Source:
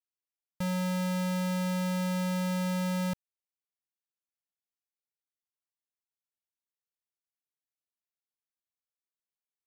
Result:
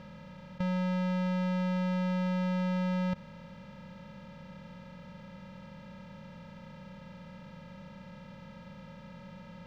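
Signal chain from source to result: per-bin compression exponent 0.2; air absorption 240 m

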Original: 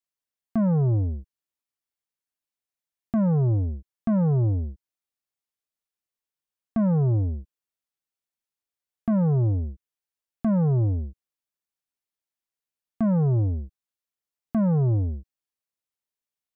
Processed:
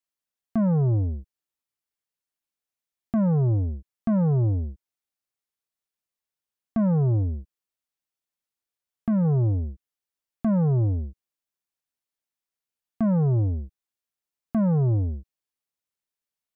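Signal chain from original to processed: 7.22–9.25 dynamic EQ 760 Hz, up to -6 dB, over -44 dBFS, Q 1.4

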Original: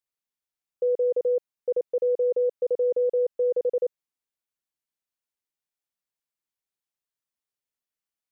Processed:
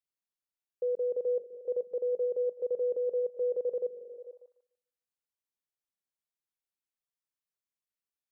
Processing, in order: delay with a stepping band-pass 0.148 s, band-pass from 190 Hz, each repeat 0.7 oct, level -7 dB; gain -7 dB

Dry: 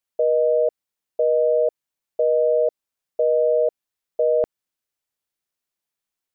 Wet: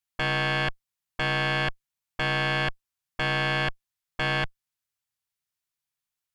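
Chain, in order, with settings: added harmonics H 3 -6 dB, 4 -20 dB, 8 -21 dB, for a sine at -11.5 dBFS; soft clip -22 dBFS, distortion -6 dB; graphic EQ 125/250/500 Hz +6/-7/-9 dB; gain +4 dB

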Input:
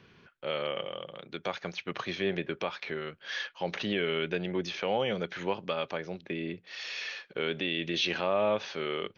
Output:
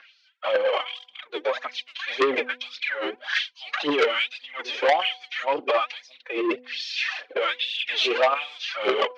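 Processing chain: phaser 1.8 Hz, delay 4.9 ms, feedback 67%; LFO high-pass sine 1.2 Hz 330–4800 Hz; formant-preserving pitch shift +6 st; air absorption 120 m; de-hum 249.5 Hz, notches 4; core saturation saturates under 2000 Hz; gain +7 dB

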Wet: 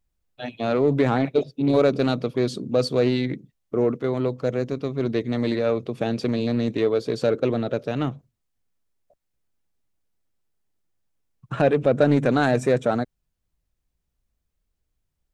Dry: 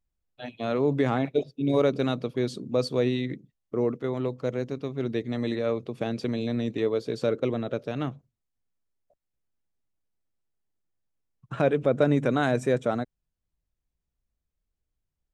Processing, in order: in parallel at -6.5 dB: soft clip -25 dBFS, distortion -8 dB; on the sum: Doppler distortion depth 0.15 ms; gain +2.5 dB

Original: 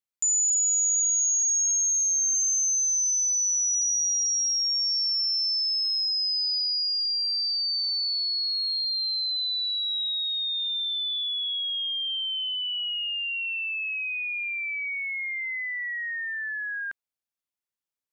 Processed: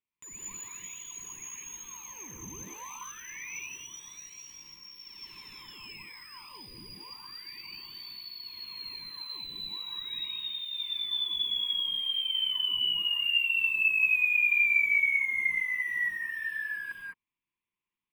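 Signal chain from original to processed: in parallel at -8 dB: wrapped overs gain 31.5 dB; on the sum: EQ curve 390 Hz 0 dB, 690 Hz -25 dB, 1000 Hz +6 dB, 1400 Hz -15 dB, 2400 Hz +3 dB, 3500 Hz -8 dB, 5200 Hz -30 dB, 9400 Hz -19 dB; non-linear reverb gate 0.23 s rising, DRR -3 dB

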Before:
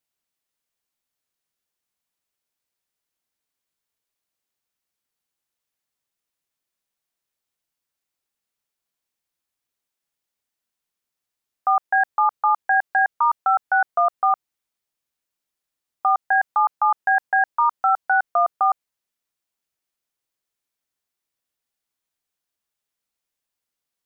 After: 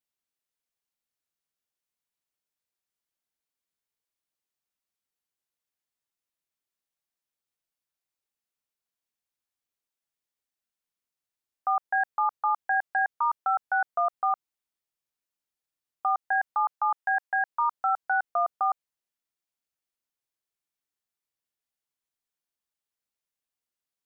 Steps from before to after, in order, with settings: 16.73–17.48 HPF 380 Hz -> 670 Hz 12 dB/oct; gain -7 dB

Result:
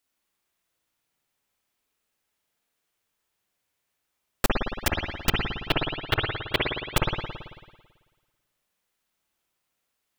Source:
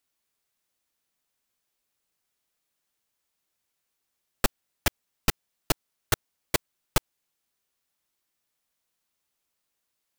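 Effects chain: 5.29–6.97 resonant high shelf 4700 Hz -13.5 dB, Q 3; spring tank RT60 1.4 s, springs 55 ms, chirp 70 ms, DRR -2 dB

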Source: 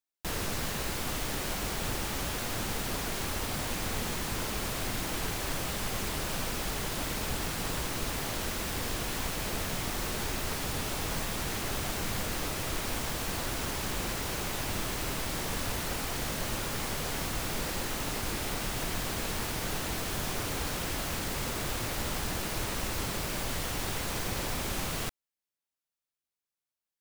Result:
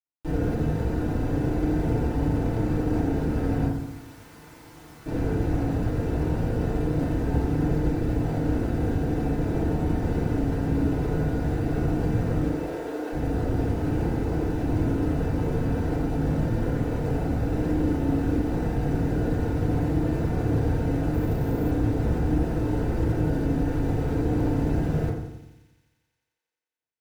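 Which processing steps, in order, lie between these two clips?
median filter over 41 samples; 12.45–13.12 steep high-pass 330 Hz; thin delay 88 ms, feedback 79%, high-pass 2700 Hz, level -9.5 dB; 3.67–5.06 room tone; FDN reverb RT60 0.89 s, low-frequency decay 1.25×, high-frequency decay 0.25×, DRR -10 dB; 21.14–21.71 careless resampling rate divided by 3×, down none, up hold

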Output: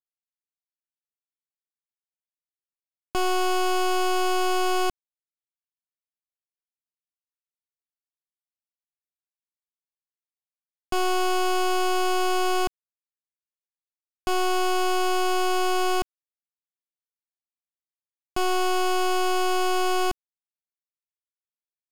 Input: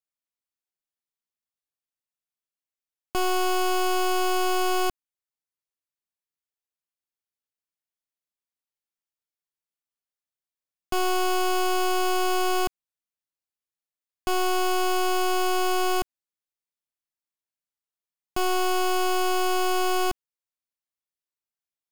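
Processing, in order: LPF 11000 Hz 12 dB/oct; bit-crush 5-bit; gain +1.5 dB

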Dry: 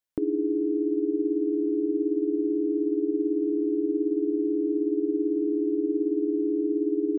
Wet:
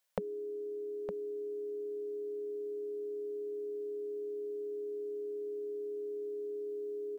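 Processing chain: elliptic band-stop 190–500 Hz, stop band 40 dB; resonant low shelf 170 Hz -12 dB, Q 3; echo 0.912 s -8.5 dB; gain +9 dB

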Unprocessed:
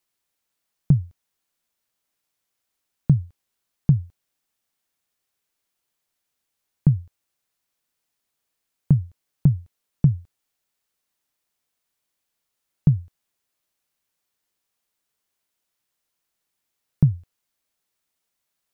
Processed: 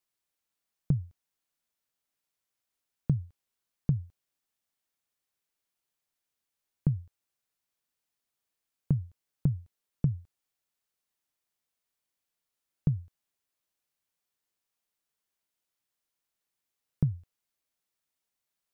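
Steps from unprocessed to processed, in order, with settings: compressor, threshold -14 dBFS, peak gain reduction 4 dB; gain -7 dB

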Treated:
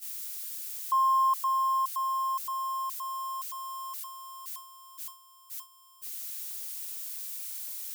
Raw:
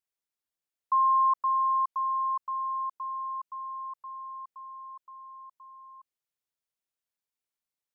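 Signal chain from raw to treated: switching spikes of -31.5 dBFS; gate -38 dBFS, range -13 dB; gain -1.5 dB

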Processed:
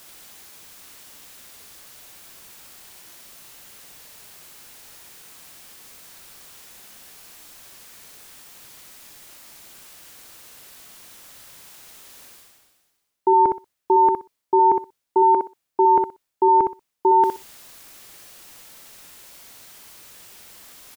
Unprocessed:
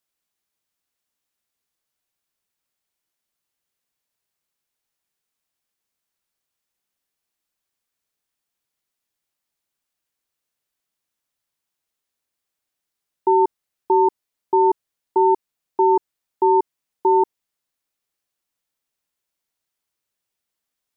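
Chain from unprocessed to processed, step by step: reverse; upward compressor, threshold -19 dBFS; reverse; feedback echo 62 ms, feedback 17%, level -5 dB

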